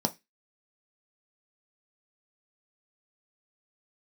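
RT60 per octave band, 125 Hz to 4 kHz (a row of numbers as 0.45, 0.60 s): 0.25, 0.25, 0.20, 0.20, 0.25, 0.25 s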